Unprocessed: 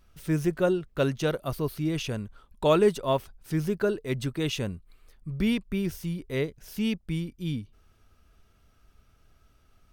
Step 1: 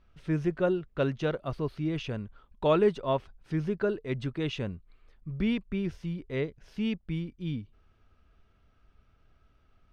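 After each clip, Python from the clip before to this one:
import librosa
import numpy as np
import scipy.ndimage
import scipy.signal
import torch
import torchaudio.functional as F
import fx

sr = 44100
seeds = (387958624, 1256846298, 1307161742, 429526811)

y = scipy.signal.sosfilt(scipy.signal.butter(2, 3300.0, 'lowpass', fs=sr, output='sos'), x)
y = y * 10.0 ** (-2.5 / 20.0)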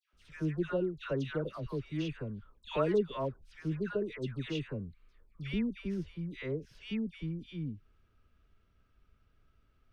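y = fx.peak_eq(x, sr, hz=760.0, db=-7.0, octaves=0.53)
y = fx.dispersion(y, sr, late='lows', ms=135.0, hz=1300.0)
y = y * 10.0 ** (-4.5 / 20.0)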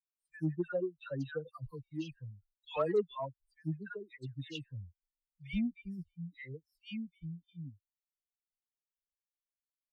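y = fx.bin_expand(x, sr, power=3.0)
y = fx.cheby_harmonics(y, sr, harmonics=(5,), levels_db=(-31,), full_scale_db=-21.5)
y = y * 10.0 ** (1.5 / 20.0)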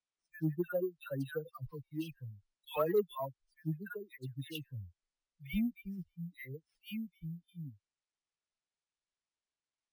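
y = np.repeat(x[::3], 3)[:len(x)]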